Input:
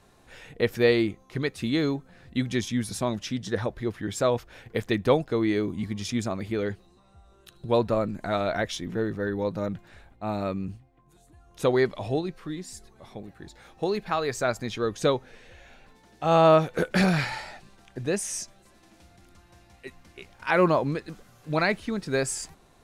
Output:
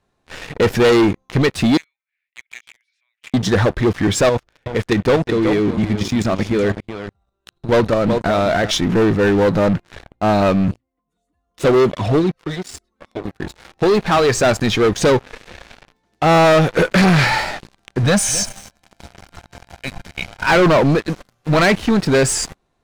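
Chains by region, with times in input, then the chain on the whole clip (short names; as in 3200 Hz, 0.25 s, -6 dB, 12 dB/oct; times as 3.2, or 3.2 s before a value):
1.77–3.34 compressor 2:1, threshold -32 dBFS + ladder high-pass 2100 Hz, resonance 75% + tape spacing loss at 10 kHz 23 dB
4.29–8.71 LPF 12000 Hz + level quantiser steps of 11 dB + echo 0.374 s -11.5 dB
10.71–13.25 envelope flanger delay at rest 4.4 ms, full sweep at -20.5 dBFS + notch comb 810 Hz
18.03–20.47 comb 1.3 ms, depth 91% + echo 0.256 s -19 dB
whole clip: sample leveller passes 5; high shelf 9000 Hz -11 dB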